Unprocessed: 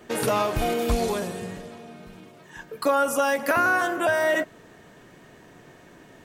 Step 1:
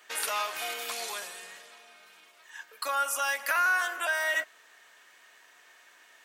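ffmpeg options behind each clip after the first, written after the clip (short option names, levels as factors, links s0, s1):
-af "highpass=1400"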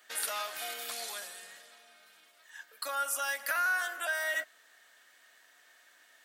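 -af "equalizer=f=160:t=o:w=0.67:g=-7,equalizer=f=400:t=o:w=0.67:g=-8,equalizer=f=1000:t=o:w=0.67:g=-9,equalizer=f=2500:t=o:w=0.67:g=-7,equalizer=f=6300:t=o:w=0.67:g=-4"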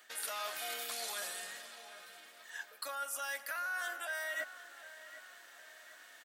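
-filter_complex "[0:a]areverse,acompressor=threshold=0.00794:ratio=6,areverse,asplit=2[s0][s1];[s1]adelay=756,lowpass=f=3300:p=1,volume=0.2,asplit=2[s2][s3];[s3]adelay=756,lowpass=f=3300:p=1,volume=0.48,asplit=2[s4][s5];[s5]adelay=756,lowpass=f=3300:p=1,volume=0.48,asplit=2[s6][s7];[s7]adelay=756,lowpass=f=3300:p=1,volume=0.48,asplit=2[s8][s9];[s9]adelay=756,lowpass=f=3300:p=1,volume=0.48[s10];[s0][s2][s4][s6][s8][s10]amix=inputs=6:normalize=0,volume=1.68"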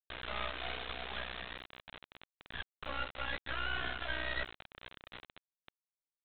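-af "aeval=exprs='val(0)*sin(2*PI*31*n/s)':c=same,aresample=8000,acrusher=bits=5:dc=4:mix=0:aa=0.000001,aresample=44100,volume=2.51"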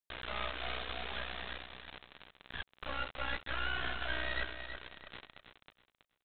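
-af "aecho=1:1:325|650|975:0.376|0.094|0.0235"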